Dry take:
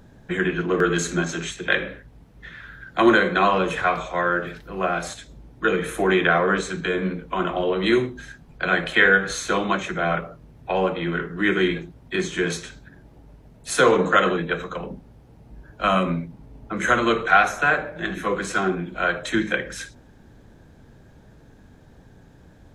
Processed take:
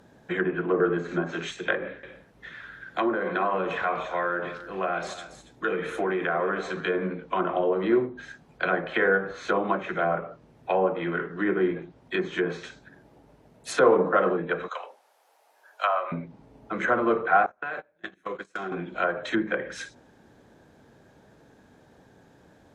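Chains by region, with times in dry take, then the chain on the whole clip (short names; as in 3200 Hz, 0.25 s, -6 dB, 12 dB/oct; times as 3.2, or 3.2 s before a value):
1.75–6.87 compressor 2:1, threshold -24 dBFS + echo 0.281 s -14.5 dB
14.68–16.12 HPF 650 Hz 24 dB/oct + high shelf 6800 Hz +10.5 dB
17.46–18.72 gate -26 dBFS, range -31 dB + compressor 10:1, threshold -27 dBFS
whole clip: treble ducked by the level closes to 1100 Hz, closed at -18.5 dBFS; HPF 260 Hz 6 dB/oct; bell 610 Hz +3 dB 2.2 oct; gain -2.5 dB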